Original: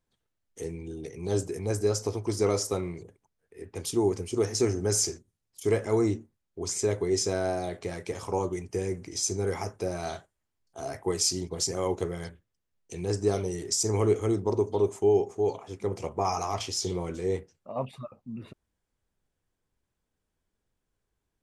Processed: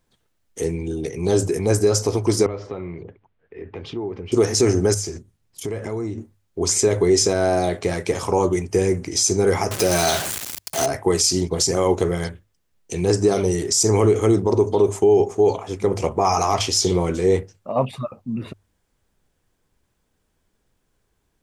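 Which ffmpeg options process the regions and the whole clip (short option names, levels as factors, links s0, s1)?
-filter_complex "[0:a]asettb=1/sr,asplit=3[s0][s1][s2];[s0]atrim=end=2.464[s3];[s1]atrim=start=2.46:end=4.32,asetpts=PTS-STARTPTS,afade=t=in:d=0.004:c=qsin,afade=t=out:st=1.856:d=0.004:c=qsin,lowpass=f=3100:w=0.5412,lowpass=f=3100:w=1.3066,acompressor=threshold=0.00631:ratio=2.5:attack=3.2:release=140:knee=1:detection=peak[s4];[s2]atrim=start=4.316[s5];[s3][s4]acrossfade=d=0.004:c1=hsin:c2=qsin[s6];[s6][s5]acrossfade=d=0.004:c1=qsin:c2=hsin,asettb=1/sr,asplit=3[s7][s8][s9];[s7]atrim=end=4.944[s10];[s8]atrim=start=4.94:end=6.18,asetpts=PTS-STARTPTS,afade=t=in:d=0.004:c=qsin,afade=t=out:st=1.236:d=0.004:c=qsin,bass=f=250:g=4,treble=f=4000:g=-4,acompressor=threshold=0.0141:ratio=5:attack=3.2:release=140:knee=1:detection=peak[s11];[s9]atrim=start=6.176[s12];[s10][s11]acrossfade=d=0.004:c1=hsin:c2=qsin[s13];[s13][s12]acrossfade=d=0.004:c1=qsin:c2=hsin,asettb=1/sr,asplit=3[s14][s15][s16];[s14]atrim=end=9.714[s17];[s15]atrim=start=9.71:end=10.86,asetpts=PTS-STARTPTS,afade=t=in:d=0.004:c=qsin,afade=t=out:st=1.146:d=0.004:c=qsin,aeval=exprs='val(0)+0.5*0.0133*sgn(val(0))':c=same,highpass=79,highshelf=f=2300:g=11[s18];[s16]atrim=start=10.856[s19];[s17][s18]acrossfade=d=0.004:c1=hsin:c2=qsin[s20];[s20][s19]acrossfade=d=0.004:c1=qsin:c2=hsin,bandreject=f=50:t=h:w=6,bandreject=f=100:t=h:w=6,alimiter=level_in=8.91:limit=0.891:release=50:level=0:latency=1,volume=0.447"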